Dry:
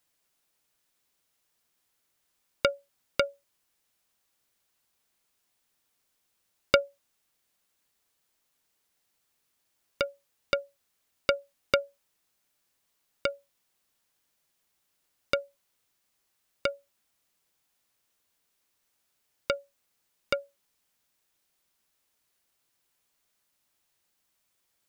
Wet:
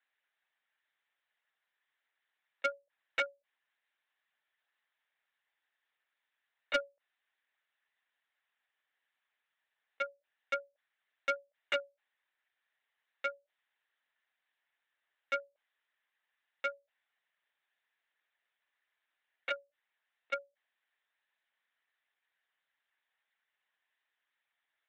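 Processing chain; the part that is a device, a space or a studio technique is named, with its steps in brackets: talking toy (LPC vocoder at 8 kHz pitch kept; HPF 600 Hz 12 dB/oct; bell 1800 Hz +11.5 dB 0.42 oct; soft clip -16 dBFS, distortion -15 dB); gain -5 dB

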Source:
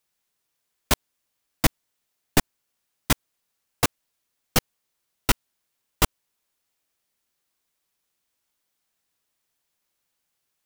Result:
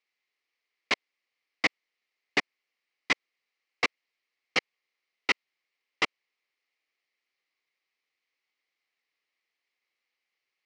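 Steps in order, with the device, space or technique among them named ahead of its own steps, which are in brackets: phone earpiece (speaker cabinet 490–4500 Hz, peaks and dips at 630 Hz -8 dB, 920 Hz -8 dB, 1500 Hz -9 dB, 2100 Hz +9 dB, 3500 Hz -6 dB)

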